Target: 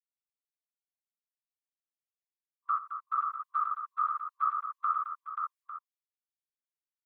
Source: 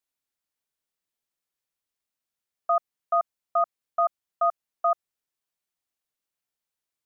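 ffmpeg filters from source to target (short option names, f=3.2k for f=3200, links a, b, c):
-filter_complex "[0:a]agate=range=-33dB:threshold=-41dB:ratio=3:detection=peak,afftfilt=real='re*(1-between(b*sr/4096,400,1100))':imag='im*(1-between(b*sr/4096,400,1100))':win_size=4096:overlap=0.75,asplit=2[a][b];[b]acompressor=threshold=-38dB:ratio=16,volume=-3dB[c];[a][c]amix=inputs=2:normalize=0,afftfilt=real='hypot(re,im)*cos(2*PI*random(0))':imag='hypot(re,im)*sin(2*PI*random(1))':win_size=512:overlap=0.75,acrossover=split=780[d][e];[d]acrusher=bits=3:mix=0:aa=0.5[f];[e]aecho=1:1:90|216|533|851:0.158|0.355|0.631|0.251[g];[f][g]amix=inputs=2:normalize=0,volume=2dB"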